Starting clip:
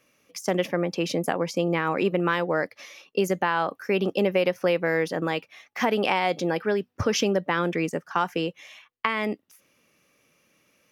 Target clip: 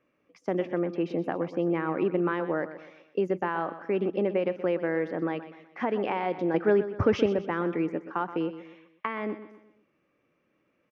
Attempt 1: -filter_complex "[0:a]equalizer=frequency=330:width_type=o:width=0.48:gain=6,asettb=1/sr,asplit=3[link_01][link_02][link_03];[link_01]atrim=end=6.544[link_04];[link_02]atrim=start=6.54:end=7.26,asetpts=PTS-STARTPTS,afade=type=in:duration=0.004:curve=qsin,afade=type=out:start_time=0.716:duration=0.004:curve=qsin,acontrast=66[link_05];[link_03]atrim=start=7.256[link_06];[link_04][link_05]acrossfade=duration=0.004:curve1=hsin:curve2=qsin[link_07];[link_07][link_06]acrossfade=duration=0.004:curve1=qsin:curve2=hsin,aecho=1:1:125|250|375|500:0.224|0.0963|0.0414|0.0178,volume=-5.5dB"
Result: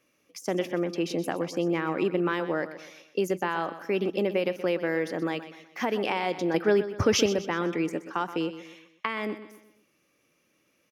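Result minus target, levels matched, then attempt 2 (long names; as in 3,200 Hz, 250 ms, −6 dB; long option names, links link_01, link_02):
2,000 Hz band +3.0 dB
-filter_complex "[0:a]lowpass=1800,equalizer=frequency=330:width_type=o:width=0.48:gain=6,asettb=1/sr,asplit=3[link_01][link_02][link_03];[link_01]atrim=end=6.544[link_04];[link_02]atrim=start=6.54:end=7.26,asetpts=PTS-STARTPTS,afade=type=in:duration=0.004:curve=qsin,afade=type=out:start_time=0.716:duration=0.004:curve=qsin,acontrast=66[link_05];[link_03]atrim=start=7.256[link_06];[link_04][link_05]acrossfade=duration=0.004:curve1=hsin:curve2=qsin[link_07];[link_07][link_06]acrossfade=duration=0.004:curve1=qsin:curve2=hsin,aecho=1:1:125|250|375|500:0.224|0.0963|0.0414|0.0178,volume=-5.5dB"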